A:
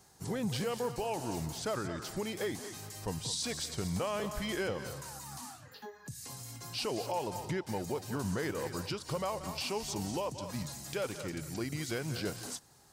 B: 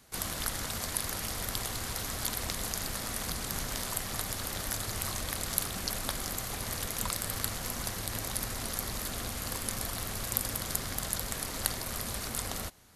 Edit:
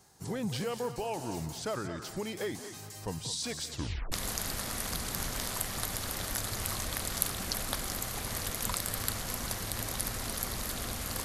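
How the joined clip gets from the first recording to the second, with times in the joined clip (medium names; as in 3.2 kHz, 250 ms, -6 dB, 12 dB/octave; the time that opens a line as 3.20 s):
A
3.71 s: tape stop 0.41 s
4.12 s: go over to B from 2.48 s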